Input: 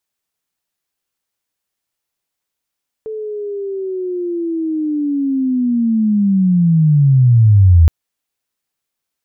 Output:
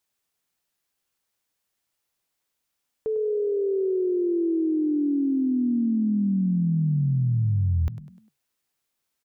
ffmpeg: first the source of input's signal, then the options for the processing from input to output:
-f lavfi -i "aevalsrc='pow(10,(-22+18*t/4.82)/20)*sin(2*PI*(440*t-362*t*t/(2*4.82)))':d=4.82:s=44100"
-filter_complex "[0:a]acompressor=threshold=-22dB:ratio=8,asplit=5[a][b][c][d][e];[b]adelay=100,afreqshift=34,volume=-13.5dB[f];[c]adelay=200,afreqshift=68,volume=-21.2dB[g];[d]adelay=300,afreqshift=102,volume=-29dB[h];[e]adelay=400,afreqshift=136,volume=-36.7dB[i];[a][f][g][h][i]amix=inputs=5:normalize=0"

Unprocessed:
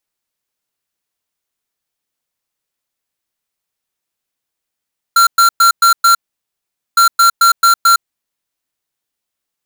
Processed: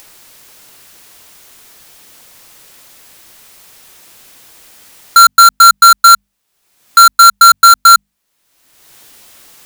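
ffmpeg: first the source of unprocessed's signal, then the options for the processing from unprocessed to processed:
-f lavfi -i "aevalsrc='0.398*(2*lt(mod(1370*t,1),0.5)-1)*clip(min(mod(mod(t,1.81),0.22),0.11-mod(mod(t,1.81),0.22))/0.005,0,1)*lt(mod(t,1.81),1.1)':d=3.62:s=44100"
-filter_complex "[0:a]bandreject=f=50:t=h:w=6,bandreject=f=100:t=h:w=6,bandreject=f=150:t=h:w=6,bandreject=f=200:t=h:w=6,bandreject=f=250:t=h:w=6,asplit=2[a][b];[b]acompressor=mode=upward:threshold=-12dB:ratio=2.5,volume=0dB[c];[a][c]amix=inputs=2:normalize=0"

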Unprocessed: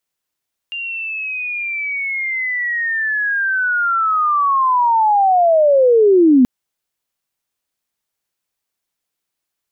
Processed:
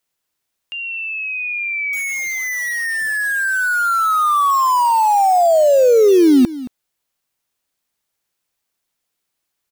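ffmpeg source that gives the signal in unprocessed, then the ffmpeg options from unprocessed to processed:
-f lavfi -i "aevalsrc='pow(10,(-22.5+16*t/5.73)/20)*sin(2*PI*(2800*t-2560*t*t/(2*5.73)))':d=5.73:s=44100"
-filter_complex "[0:a]acrossover=split=2600[a][b];[b]acompressor=threshold=-41dB:ratio=4:attack=1:release=60[c];[a][c]amix=inputs=2:normalize=0,asplit=2[d][e];[e]aeval=exprs='(mod(11.9*val(0)+1,2)-1)/11.9':c=same,volume=-7dB[f];[d][f]amix=inputs=2:normalize=0,aecho=1:1:223:0.15"

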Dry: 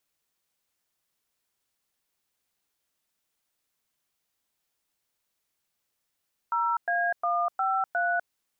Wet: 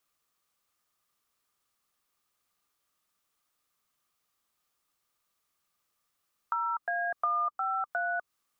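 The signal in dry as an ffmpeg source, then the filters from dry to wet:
-f lavfi -i "aevalsrc='0.0501*clip(min(mod(t,0.357),0.249-mod(t,0.357))/0.002,0,1)*(eq(floor(t/0.357),0)*(sin(2*PI*941*mod(t,0.357))+sin(2*PI*1336*mod(t,0.357)))+eq(floor(t/0.357),1)*(sin(2*PI*697*mod(t,0.357))+sin(2*PI*1633*mod(t,0.357)))+eq(floor(t/0.357),2)*(sin(2*PI*697*mod(t,0.357))+sin(2*PI*1209*mod(t,0.357)))+eq(floor(t/0.357),3)*(sin(2*PI*770*mod(t,0.357))+sin(2*PI*1336*mod(t,0.357)))+eq(floor(t/0.357),4)*(sin(2*PI*697*mod(t,0.357))+sin(2*PI*1477*mod(t,0.357))))':d=1.785:s=44100"
-filter_complex "[0:a]equalizer=f=1.2k:w=6.9:g=13.5,acrossover=split=360[a][b];[b]acompressor=threshold=-29dB:ratio=6[c];[a][c]amix=inputs=2:normalize=0"

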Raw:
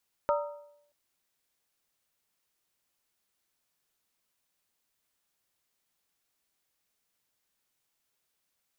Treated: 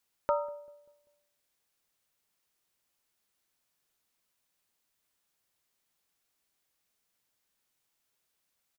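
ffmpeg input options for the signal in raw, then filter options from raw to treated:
-f lavfi -i "aevalsrc='0.0708*pow(10,-3*t/0.76)*sin(2*PI*584*t)+0.0473*pow(10,-3*t/0.602)*sin(2*PI*930.9*t)+0.0316*pow(10,-3*t/0.52)*sin(2*PI*1247.4*t)+0.0211*pow(10,-3*t/0.502)*sin(2*PI*1340.9*t)':d=0.63:s=44100"
-filter_complex "[0:a]asplit=2[a][b];[b]adelay=195,lowpass=f=810:p=1,volume=-23dB,asplit=2[c][d];[d]adelay=195,lowpass=f=810:p=1,volume=0.53,asplit=2[e][f];[f]adelay=195,lowpass=f=810:p=1,volume=0.53,asplit=2[g][h];[h]adelay=195,lowpass=f=810:p=1,volume=0.53[i];[a][c][e][g][i]amix=inputs=5:normalize=0"

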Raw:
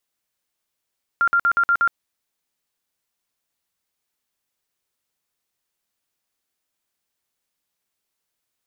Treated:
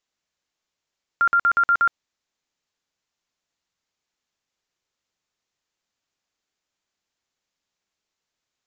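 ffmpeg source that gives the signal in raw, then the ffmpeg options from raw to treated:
-f lavfi -i "aevalsrc='0.2*sin(2*PI*1390*mod(t,0.12))*lt(mod(t,0.12),92/1390)':d=0.72:s=44100"
-af "aresample=16000,aresample=44100"

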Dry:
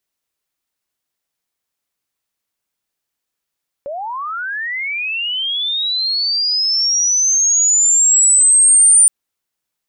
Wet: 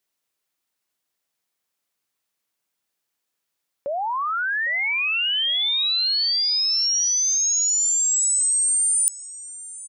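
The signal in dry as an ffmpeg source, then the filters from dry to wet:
-f lavfi -i "aevalsrc='pow(10,(-22.5+17*t/5.22)/20)*sin(2*PI*(540*t+8660*t*t/(2*5.22)))':d=5.22:s=44100"
-af "highpass=f=130:p=1,areverse,acompressor=threshold=-20dB:ratio=6,areverse,aecho=1:1:805|1610|2415:0.133|0.0467|0.0163"

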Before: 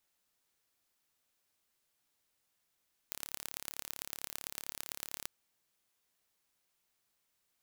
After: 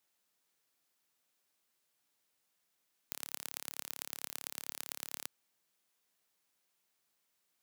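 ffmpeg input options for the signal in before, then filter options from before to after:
-f lavfi -i "aevalsrc='0.316*eq(mod(n,1239),0)*(0.5+0.5*eq(mod(n,4956),0))':d=2.14:s=44100"
-af "highpass=130"

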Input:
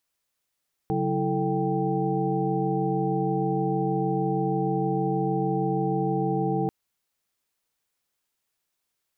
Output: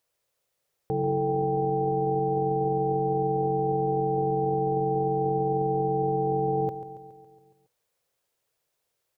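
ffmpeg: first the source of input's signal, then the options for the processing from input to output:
-f lavfi -i "aevalsrc='0.0355*(sin(2*PI*138.59*t)+sin(2*PI*185*t)+sin(2*PI*329.63*t)+sin(2*PI*440*t)+sin(2*PI*783.99*t))':d=5.79:s=44100"
-af "equalizer=f=125:t=o:w=1:g=7,equalizer=f=250:t=o:w=1:g=-6,equalizer=f=500:t=o:w=1:g=12,alimiter=limit=-20dB:level=0:latency=1:release=12,aecho=1:1:139|278|417|556|695|834|973:0.237|0.14|0.0825|0.0487|0.0287|0.017|0.01"

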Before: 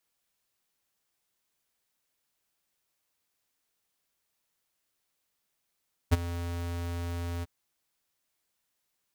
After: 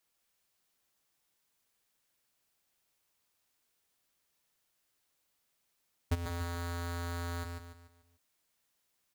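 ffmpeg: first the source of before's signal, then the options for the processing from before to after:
-f lavfi -i "aevalsrc='0.119*(2*lt(mod(86*t,1),0.5)-1)':d=1.346:s=44100,afade=t=in:d=0.022,afade=t=out:st=0.022:d=0.025:silence=0.168,afade=t=out:st=1.32:d=0.026"
-filter_complex "[0:a]alimiter=level_in=2.5dB:limit=-24dB:level=0:latency=1:release=192,volume=-2.5dB,asplit=2[a][b];[b]aecho=0:1:145|290|435|580|725:0.562|0.225|0.09|0.036|0.0144[c];[a][c]amix=inputs=2:normalize=0"

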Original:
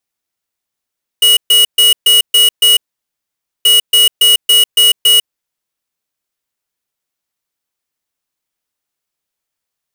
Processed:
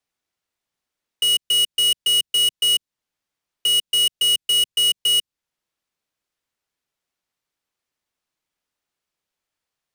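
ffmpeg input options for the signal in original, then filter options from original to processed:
-f lavfi -i "aevalsrc='0.422*(2*lt(mod(2910*t,1),0.5)-1)*clip(min(mod(mod(t,2.43),0.28),0.15-mod(mod(t,2.43),0.28))/0.005,0,1)*lt(mod(t,2.43),1.68)':d=4.86:s=44100"
-filter_complex "[0:a]highshelf=f=8.2k:g=-11.5,acrossover=split=210|3000[a][b][c];[b]acompressor=threshold=-26dB:ratio=6[d];[a][d][c]amix=inputs=3:normalize=0,acrossover=split=300[e][f];[f]alimiter=limit=-11.5dB:level=0:latency=1:release=457[g];[e][g]amix=inputs=2:normalize=0"

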